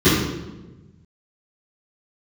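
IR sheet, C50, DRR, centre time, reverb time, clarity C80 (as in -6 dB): 2.0 dB, -19.0 dB, 65 ms, 1.1 s, 4.0 dB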